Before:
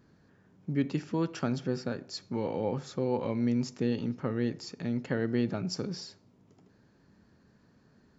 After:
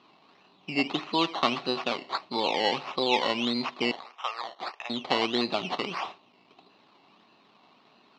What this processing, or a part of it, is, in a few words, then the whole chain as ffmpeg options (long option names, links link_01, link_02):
circuit-bent sampling toy: -filter_complex "[0:a]asettb=1/sr,asplit=3[link_01][link_02][link_03];[link_01]atrim=end=3.914[link_04];[link_02]atrim=start=3.91:end=4.9,asetpts=PTS-STARTPTS,afade=type=in:duration=0.004:curve=qsin,afade=type=out:start_time=0.986:duration=0.004:curve=qsin,highpass=frequency=750:width=0.5412,highpass=frequency=750:width=1.3066[link_05];[link_03]atrim=start=4.896[link_06];[link_04][link_05]acrossfade=duration=0.004:curve1=hsin:curve2=qsin[link_07];[link_07][link_06]acrossfade=duration=0.004:curve1=qsin:curve2=hsin,acrusher=samples=14:mix=1:aa=0.000001:lfo=1:lforange=8.4:lforate=1.6,highpass=420,equalizer=frequency=490:width_type=q:width=4:gain=-6,equalizer=frequency=750:width_type=q:width=4:gain=6,equalizer=frequency=1100:width_type=q:width=4:gain=9,equalizer=frequency=1600:width_type=q:width=4:gain=-8,equalizer=frequency=2700:width_type=q:width=4:gain=7,equalizer=frequency=4000:width_type=q:width=4:gain=9,lowpass=frequency=4800:width=0.5412,lowpass=frequency=4800:width=1.3066,volume=8dB"